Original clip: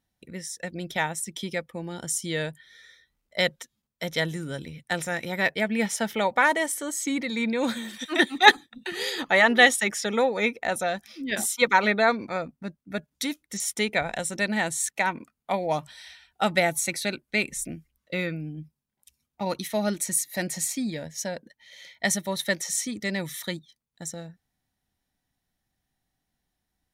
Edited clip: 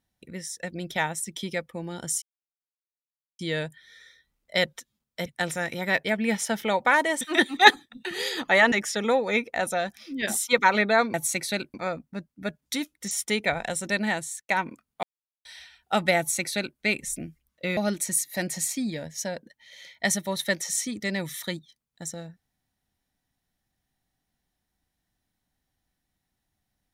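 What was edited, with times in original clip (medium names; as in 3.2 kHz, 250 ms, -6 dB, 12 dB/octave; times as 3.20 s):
2.22 s: insert silence 1.17 s
4.09–4.77 s: delete
6.72–8.02 s: delete
9.53–9.81 s: delete
14.56–14.98 s: fade out
15.52–15.94 s: mute
16.67–17.27 s: copy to 12.23 s
18.26–19.77 s: delete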